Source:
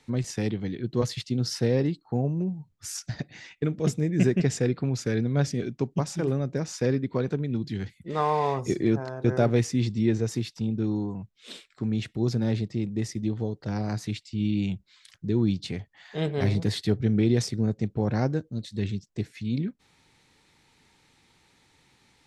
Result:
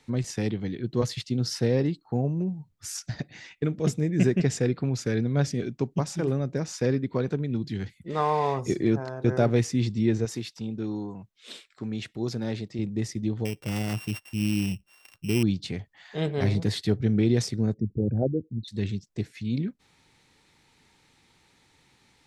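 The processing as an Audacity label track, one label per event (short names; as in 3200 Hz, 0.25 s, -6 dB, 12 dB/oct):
10.250000	12.790000	low shelf 230 Hz -9 dB
13.450000	15.430000	sample sorter in blocks of 16 samples
17.740000	18.680000	formant sharpening exponent 3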